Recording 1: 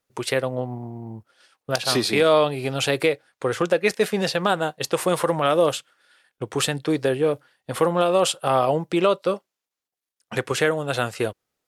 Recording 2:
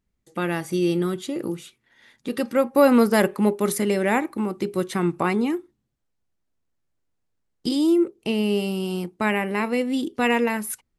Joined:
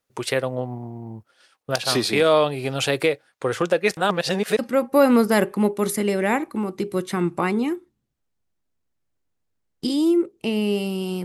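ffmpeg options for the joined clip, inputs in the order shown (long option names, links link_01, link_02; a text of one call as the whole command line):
ffmpeg -i cue0.wav -i cue1.wav -filter_complex "[0:a]apad=whole_dur=11.24,atrim=end=11.24,asplit=2[link_01][link_02];[link_01]atrim=end=3.972[link_03];[link_02]atrim=start=3.968:end=4.592,asetpts=PTS-STARTPTS,areverse[link_04];[1:a]atrim=start=2.408:end=9.06[link_05];[link_03][link_04]acrossfade=duration=0.004:curve1=hsin:curve2=hsin[link_06];[link_06][link_05]acrossfade=duration=0.004:curve1=hsin:curve2=hsin" out.wav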